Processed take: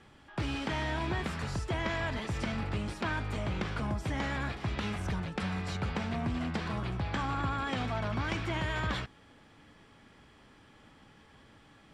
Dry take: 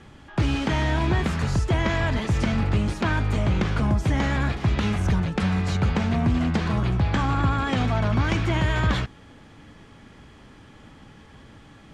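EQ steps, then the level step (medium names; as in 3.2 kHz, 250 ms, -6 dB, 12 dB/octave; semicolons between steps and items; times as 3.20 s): bass shelf 300 Hz -6.5 dB; band-stop 6.5 kHz, Q 12; -7.0 dB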